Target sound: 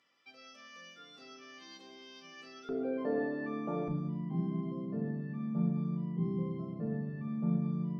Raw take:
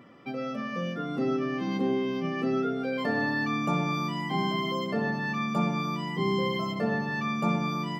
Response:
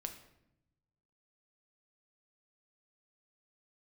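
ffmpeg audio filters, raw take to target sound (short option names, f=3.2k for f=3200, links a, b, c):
-filter_complex "[0:a]asetnsamples=n=441:p=0,asendcmd='2.69 bandpass f 430;3.88 bandpass f 150',bandpass=f=5.4k:t=q:w=1.4:csg=0[a];[1:a]atrim=start_sample=2205[b];[a][b]afir=irnorm=-1:irlink=0"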